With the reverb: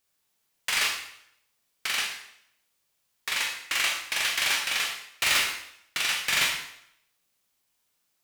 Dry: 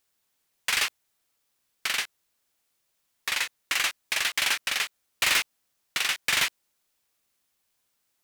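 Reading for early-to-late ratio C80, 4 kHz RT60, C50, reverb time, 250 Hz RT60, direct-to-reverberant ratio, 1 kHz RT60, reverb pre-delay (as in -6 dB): 7.0 dB, 0.65 s, 4.5 dB, 0.75 s, 0.70 s, 0.5 dB, 0.70 s, 19 ms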